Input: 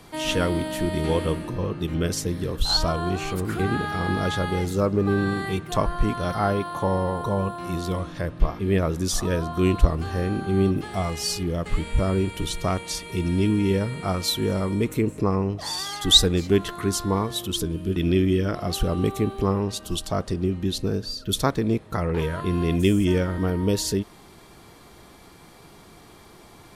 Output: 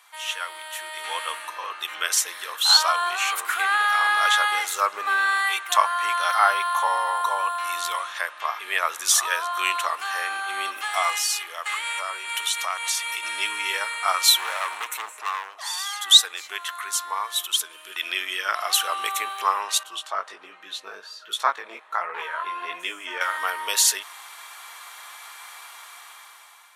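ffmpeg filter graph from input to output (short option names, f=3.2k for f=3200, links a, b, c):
-filter_complex "[0:a]asettb=1/sr,asplit=3[a][b][c];[a]atrim=end=11.154[d];[b]atrim=start=11.15:end=13.23,asetpts=PTS-STARTPTS,afade=t=in:d=0.004:c=qsin,afade=t=out:st=2.076:d=0.004:c=qsin,highpass=360,acompressor=threshold=-33dB:ratio=2.5:attack=3.2:release=140:knee=1:detection=peak[e];[c]atrim=start=13.226[f];[d][e]acrossfade=d=0.004:c1=hsin:c2=qsin[g];[g][f]acrossfade=d=0.004:c1=qsin:c2=hsin,asettb=1/sr,asplit=3[h][i][j];[h]atrim=end=14.364[k];[i]atrim=start=14.36:end=15.62,asetpts=PTS-STARTPTS,afade=t=in:d=0.004:c=qsin,afade=t=out:st=1.256:d=0.004:c=qsin,equalizer=f=910:w=0.83:g=5,asoftclip=type=hard:threshold=-24.5dB[l];[j]atrim=start=15.616[m];[k][l]acrossfade=d=0.004:c1=hsin:c2=qsin[n];[n][m]acrossfade=d=0.004:c1=qsin:c2=hsin,asettb=1/sr,asplit=3[o][p][q];[o]atrim=end=19.834[r];[p]atrim=start=19.83:end=23.21,asetpts=PTS-STARTPTS,afade=t=in:d=0.004:c=qsin,afade=t=out:st=3.376:d=0.004:c=qsin,lowpass=f=1.3k:p=1,lowshelf=f=270:g=8,flanger=delay=16.5:depth=4.5:speed=1.3[s];[q]atrim=start=23.206[t];[r][s]acrossfade=d=0.004:c1=hsin:c2=qsin[u];[u][t]acrossfade=d=0.004:c1=qsin:c2=hsin,highpass=f=1k:w=0.5412,highpass=f=1k:w=1.3066,equalizer=f=4.8k:t=o:w=0.39:g=-7.5,dynaudnorm=f=490:g=5:m=14dB,volume=-1dB"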